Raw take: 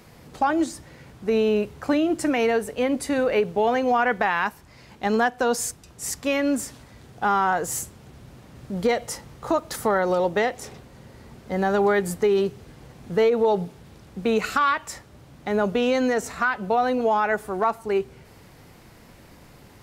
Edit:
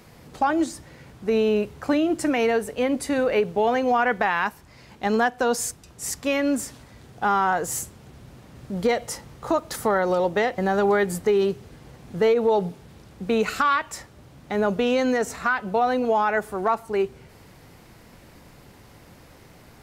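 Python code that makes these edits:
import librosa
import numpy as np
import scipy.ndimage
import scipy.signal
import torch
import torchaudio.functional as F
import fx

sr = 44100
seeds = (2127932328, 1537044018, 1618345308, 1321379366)

y = fx.edit(x, sr, fx.cut(start_s=10.58, length_s=0.96), tone=tone)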